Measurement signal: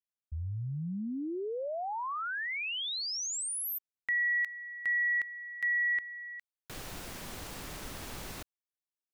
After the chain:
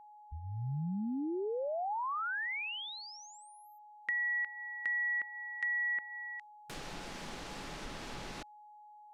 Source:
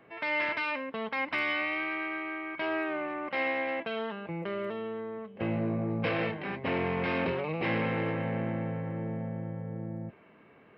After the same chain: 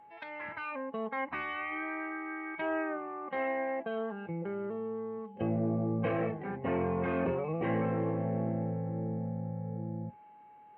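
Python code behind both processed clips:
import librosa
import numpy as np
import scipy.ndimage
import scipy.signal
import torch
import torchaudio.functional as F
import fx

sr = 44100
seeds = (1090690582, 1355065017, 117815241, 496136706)

y = fx.env_lowpass_down(x, sr, base_hz=1700.0, full_db=-32.0)
y = fx.noise_reduce_blind(y, sr, reduce_db=11)
y = y + 10.0 ** (-53.0 / 20.0) * np.sin(2.0 * np.pi * 840.0 * np.arange(len(y)) / sr)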